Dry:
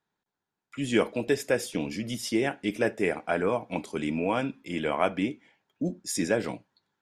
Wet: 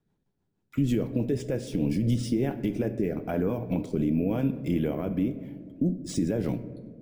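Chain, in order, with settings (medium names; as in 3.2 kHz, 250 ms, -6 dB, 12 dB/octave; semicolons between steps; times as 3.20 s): careless resampling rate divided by 3×, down none, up hold; tilt EQ -3 dB/octave; compression, threshold -25 dBFS, peak gain reduction 11 dB; rotary cabinet horn 6.3 Hz, later 1 Hz, at 1.61 s; peak limiter -24 dBFS, peak gain reduction 8.5 dB; peaking EQ 1.3 kHz -8 dB 2.6 oct; on a send: reverberation RT60 1.9 s, pre-delay 3 ms, DRR 11.5 dB; on the sum: trim +8.5 dB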